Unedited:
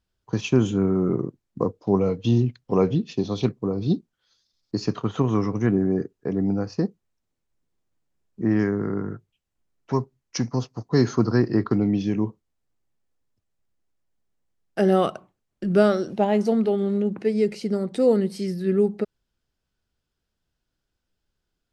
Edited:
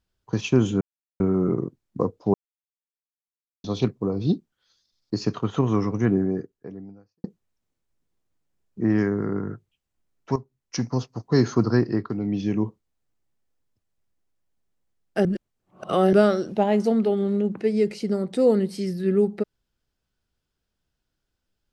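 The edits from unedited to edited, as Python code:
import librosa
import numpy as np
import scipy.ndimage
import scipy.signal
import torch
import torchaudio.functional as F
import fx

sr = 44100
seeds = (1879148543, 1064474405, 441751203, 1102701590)

y = fx.edit(x, sr, fx.insert_silence(at_s=0.81, length_s=0.39),
    fx.silence(start_s=1.95, length_s=1.3),
    fx.fade_out_span(start_s=5.77, length_s=1.08, curve='qua'),
    fx.fade_in_from(start_s=9.97, length_s=0.52, floor_db=-12.5),
    fx.fade_down_up(start_s=11.38, length_s=0.75, db=-8.0, fade_s=0.37),
    fx.reverse_span(start_s=14.86, length_s=0.88), tone=tone)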